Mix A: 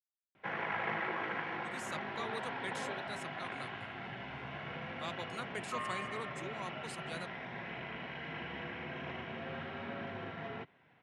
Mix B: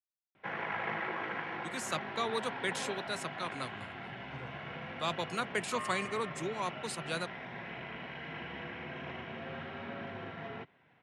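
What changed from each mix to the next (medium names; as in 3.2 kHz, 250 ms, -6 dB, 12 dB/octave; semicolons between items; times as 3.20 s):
speech +8.5 dB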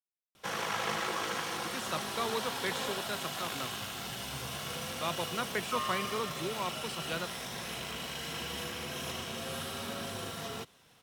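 background: remove cabinet simulation 110–2100 Hz, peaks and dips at 210 Hz -3 dB, 490 Hz -6 dB, 1.2 kHz -8 dB, 2.1 kHz +4 dB; master: add treble shelf 5.6 kHz -10 dB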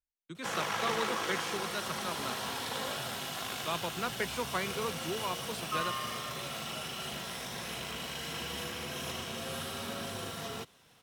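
speech: entry -1.35 s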